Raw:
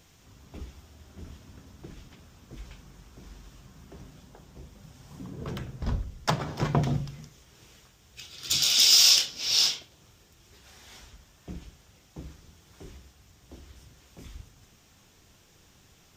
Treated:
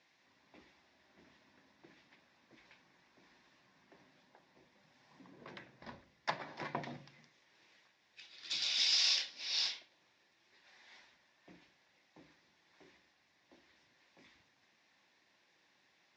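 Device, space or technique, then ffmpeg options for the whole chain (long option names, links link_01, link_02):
phone earpiece: -af "highpass=440,equalizer=frequency=440:width_type=q:width=4:gain=-10,equalizer=frequency=710:width_type=q:width=4:gain=-4,equalizer=frequency=1300:width_type=q:width=4:gain=-9,equalizer=frequency=1900:width_type=q:width=4:gain=5,equalizer=frequency=3100:width_type=q:width=4:gain=-8,lowpass=frequency=4400:width=0.5412,lowpass=frequency=4400:width=1.3066,volume=-6dB"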